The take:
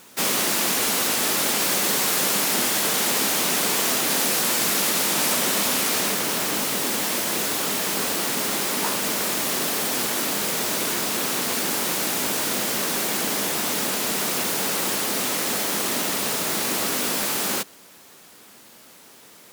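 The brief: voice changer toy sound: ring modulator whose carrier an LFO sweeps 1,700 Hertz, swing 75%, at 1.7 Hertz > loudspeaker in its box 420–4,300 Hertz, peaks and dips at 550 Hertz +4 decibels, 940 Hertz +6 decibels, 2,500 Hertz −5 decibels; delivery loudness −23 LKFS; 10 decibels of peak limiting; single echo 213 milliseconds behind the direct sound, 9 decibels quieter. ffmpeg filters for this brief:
ffmpeg -i in.wav -af "alimiter=limit=-18dB:level=0:latency=1,aecho=1:1:213:0.355,aeval=exprs='val(0)*sin(2*PI*1700*n/s+1700*0.75/1.7*sin(2*PI*1.7*n/s))':channel_layout=same,highpass=420,equalizer=frequency=550:width_type=q:width=4:gain=4,equalizer=frequency=940:width_type=q:width=4:gain=6,equalizer=frequency=2500:width_type=q:width=4:gain=-5,lowpass=frequency=4300:width=0.5412,lowpass=frequency=4300:width=1.3066,volume=10dB" out.wav

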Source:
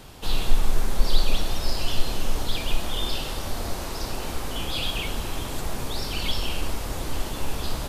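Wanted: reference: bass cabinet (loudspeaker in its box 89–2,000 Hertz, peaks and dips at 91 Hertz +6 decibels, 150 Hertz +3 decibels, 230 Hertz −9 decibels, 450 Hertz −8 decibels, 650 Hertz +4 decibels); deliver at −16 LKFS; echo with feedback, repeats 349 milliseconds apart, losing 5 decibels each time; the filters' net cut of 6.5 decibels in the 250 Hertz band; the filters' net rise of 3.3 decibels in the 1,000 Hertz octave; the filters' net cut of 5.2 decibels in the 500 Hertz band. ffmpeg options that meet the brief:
ffmpeg -i in.wav -af "highpass=frequency=89:width=0.5412,highpass=frequency=89:width=1.3066,equalizer=frequency=91:width_type=q:width=4:gain=6,equalizer=frequency=150:width_type=q:width=4:gain=3,equalizer=frequency=230:width_type=q:width=4:gain=-9,equalizer=frequency=450:width_type=q:width=4:gain=-8,equalizer=frequency=650:width_type=q:width=4:gain=4,lowpass=frequency=2000:width=0.5412,lowpass=frequency=2000:width=1.3066,equalizer=frequency=250:width_type=o:gain=-3,equalizer=frequency=500:width_type=o:gain=-8.5,equalizer=frequency=1000:width_type=o:gain=6.5,aecho=1:1:349|698|1047|1396|1745|2094|2443:0.562|0.315|0.176|0.0988|0.0553|0.031|0.0173,volume=18dB" out.wav

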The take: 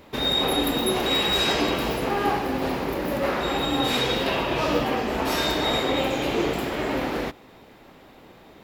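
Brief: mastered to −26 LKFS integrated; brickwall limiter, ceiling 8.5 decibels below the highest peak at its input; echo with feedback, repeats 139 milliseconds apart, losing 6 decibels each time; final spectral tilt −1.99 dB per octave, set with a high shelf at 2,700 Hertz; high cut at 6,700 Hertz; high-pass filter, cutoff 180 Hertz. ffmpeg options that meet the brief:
ffmpeg -i in.wav -af "highpass=180,lowpass=6700,highshelf=frequency=2700:gain=-3.5,alimiter=limit=-19.5dB:level=0:latency=1,aecho=1:1:139|278|417|556|695|834:0.501|0.251|0.125|0.0626|0.0313|0.0157,volume=1dB" out.wav

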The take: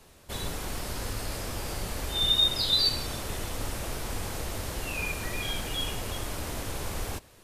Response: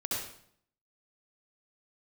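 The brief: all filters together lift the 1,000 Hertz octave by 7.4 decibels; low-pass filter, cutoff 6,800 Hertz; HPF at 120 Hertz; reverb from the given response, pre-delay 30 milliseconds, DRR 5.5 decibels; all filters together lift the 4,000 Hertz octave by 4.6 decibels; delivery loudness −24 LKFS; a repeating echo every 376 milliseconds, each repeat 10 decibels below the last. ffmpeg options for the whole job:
-filter_complex "[0:a]highpass=120,lowpass=6800,equalizer=frequency=1000:width_type=o:gain=9,equalizer=frequency=4000:width_type=o:gain=5,aecho=1:1:376|752|1128|1504:0.316|0.101|0.0324|0.0104,asplit=2[link_01][link_02];[1:a]atrim=start_sample=2205,adelay=30[link_03];[link_02][link_03]afir=irnorm=-1:irlink=0,volume=-10dB[link_04];[link_01][link_04]amix=inputs=2:normalize=0,volume=0.5dB"

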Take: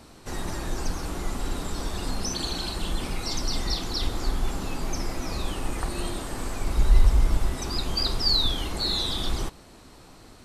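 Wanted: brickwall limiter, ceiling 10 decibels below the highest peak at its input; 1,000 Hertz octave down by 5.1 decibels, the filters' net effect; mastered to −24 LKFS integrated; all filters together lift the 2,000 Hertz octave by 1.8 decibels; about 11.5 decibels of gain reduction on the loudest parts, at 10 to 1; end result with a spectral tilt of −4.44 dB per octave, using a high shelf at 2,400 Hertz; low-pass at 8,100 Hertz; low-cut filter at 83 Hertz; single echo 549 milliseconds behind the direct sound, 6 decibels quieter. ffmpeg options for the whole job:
ffmpeg -i in.wav -af "highpass=83,lowpass=8100,equalizer=frequency=1000:width_type=o:gain=-7.5,equalizer=frequency=2000:width_type=o:gain=8.5,highshelf=frequency=2400:gain=-8,acompressor=threshold=-35dB:ratio=10,alimiter=level_in=10.5dB:limit=-24dB:level=0:latency=1,volume=-10.5dB,aecho=1:1:549:0.501,volume=18.5dB" out.wav

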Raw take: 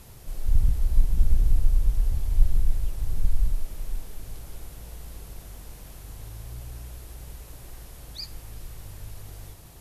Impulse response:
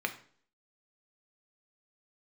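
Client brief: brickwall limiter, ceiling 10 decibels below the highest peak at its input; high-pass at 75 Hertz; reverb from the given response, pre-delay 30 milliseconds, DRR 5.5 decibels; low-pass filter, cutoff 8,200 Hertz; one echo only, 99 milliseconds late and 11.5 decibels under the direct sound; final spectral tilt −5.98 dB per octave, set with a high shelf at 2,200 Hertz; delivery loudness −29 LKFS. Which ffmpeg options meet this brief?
-filter_complex "[0:a]highpass=75,lowpass=8200,highshelf=frequency=2200:gain=-6.5,alimiter=level_in=4dB:limit=-24dB:level=0:latency=1,volume=-4dB,aecho=1:1:99:0.266,asplit=2[link_01][link_02];[1:a]atrim=start_sample=2205,adelay=30[link_03];[link_02][link_03]afir=irnorm=-1:irlink=0,volume=-11.5dB[link_04];[link_01][link_04]amix=inputs=2:normalize=0,volume=13dB"

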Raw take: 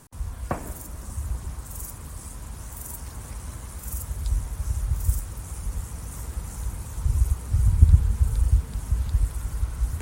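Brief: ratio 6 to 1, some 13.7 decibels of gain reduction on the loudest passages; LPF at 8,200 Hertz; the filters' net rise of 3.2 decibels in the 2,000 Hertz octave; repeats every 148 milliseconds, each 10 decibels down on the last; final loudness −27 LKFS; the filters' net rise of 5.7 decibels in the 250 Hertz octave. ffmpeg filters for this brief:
ffmpeg -i in.wav -af "lowpass=8200,equalizer=frequency=250:width_type=o:gain=8.5,equalizer=frequency=2000:width_type=o:gain=4,acompressor=threshold=-22dB:ratio=6,aecho=1:1:148|296|444|592:0.316|0.101|0.0324|0.0104,volume=5dB" out.wav

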